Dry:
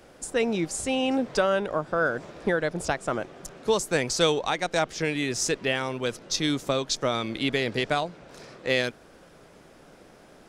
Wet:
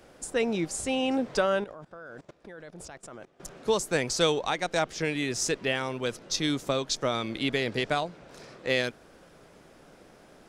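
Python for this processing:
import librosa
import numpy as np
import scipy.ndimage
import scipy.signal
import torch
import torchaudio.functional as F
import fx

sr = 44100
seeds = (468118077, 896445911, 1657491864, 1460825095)

y = fx.level_steps(x, sr, step_db=21, at=(1.64, 3.4))
y = y * librosa.db_to_amplitude(-2.0)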